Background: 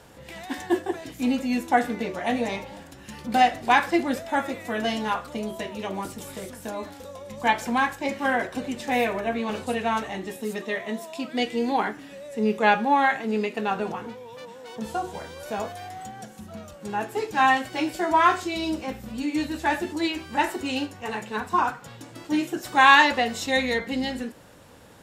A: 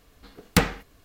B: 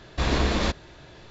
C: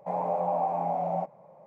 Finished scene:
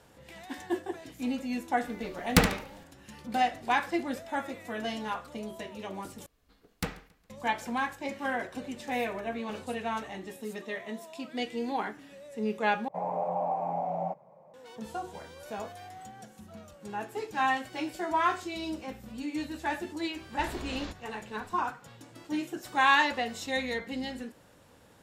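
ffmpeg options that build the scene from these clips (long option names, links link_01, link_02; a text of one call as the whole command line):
ffmpeg -i bed.wav -i cue0.wav -i cue1.wav -i cue2.wav -filter_complex "[1:a]asplit=2[link_01][link_02];[0:a]volume=-8dB[link_03];[link_01]aecho=1:1:72|144|216|288:0.376|0.113|0.0338|0.0101[link_04];[link_02]aecho=1:1:137|274|411:0.0668|0.0274|0.0112[link_05];[2:a]acompressor=threshold=-27dB:ratio=6:attack=3.2:release=140:knee=1:detection=peak[link_06];[link_03]asplit=3[link_07][link_08][link_09];[link_07]atrim=end=6.264[link_10];[link_05]atrim=end=1.04,asetpts=PTS-STARTPTS,volume=-14.5dB[link_11];[link_08]atrim=start=7.296:end=12.884[link_12];[3:a]atrim=end=1.66,asetpts=PTS-STARTPTS,volume=-3dB[link_13];[link_09]atrim=start=14.536[link_14];[link_04]atrim=end=1.04,asetpts=PTS-STARTPTS,volume=-2dB,afade=type=in:duration=0.004:curve=hsin,afade=type=out:start_time=1.036:duration=0.004:curve=hsin,adelay=1800[link_15];[link_06]atrim=end=1.3,asetpts=PTS-STARTPTS,volume=-9dB,afade=type=in:duration=0.004:curve=hsin,afade=type=out:start_time=1.296:duration=0.004:curve=hsin,adelay=20210[link_16];[link_10][link_11]acrossfade=duration=0.004:curve1=hsin:curve2=hsin[link_17];[link_17][link_12]acrossfade=duration=0.004:curve1=hsin:curve2=hsin[link_18];[link_18][link_13]acrossfade=duration=0.004:curve1=hsin:curve2=hsin[link_19];[link_19][link_14]acrossfade=duration=0.004:curve1=hsin:curve2=hsin[link_20];[link_20][link_15][link_16]amix=inputs=3:normalize=0" out.wav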